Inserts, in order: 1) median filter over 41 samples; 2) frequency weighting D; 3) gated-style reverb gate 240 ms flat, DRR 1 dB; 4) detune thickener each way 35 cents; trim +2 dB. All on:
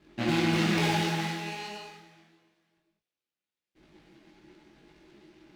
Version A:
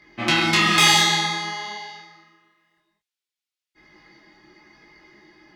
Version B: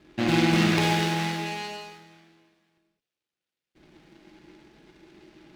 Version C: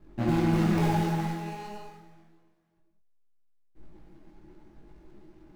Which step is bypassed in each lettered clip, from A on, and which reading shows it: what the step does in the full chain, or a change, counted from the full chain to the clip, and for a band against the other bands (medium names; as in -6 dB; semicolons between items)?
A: 1, 8 kHz band +11.5 dB; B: 4, momentary loudness spread change -2 LU; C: 2, 4 kHz band -11.5 dB